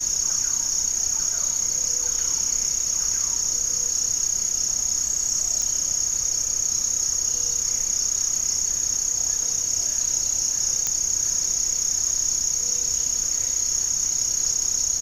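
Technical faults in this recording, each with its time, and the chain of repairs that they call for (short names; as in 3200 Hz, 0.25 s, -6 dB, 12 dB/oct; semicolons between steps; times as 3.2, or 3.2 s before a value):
5.62 pop
10.87 pop -7 dBFS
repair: de-click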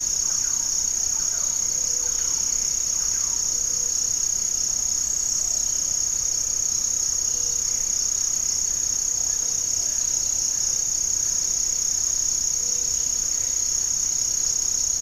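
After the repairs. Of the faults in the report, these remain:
none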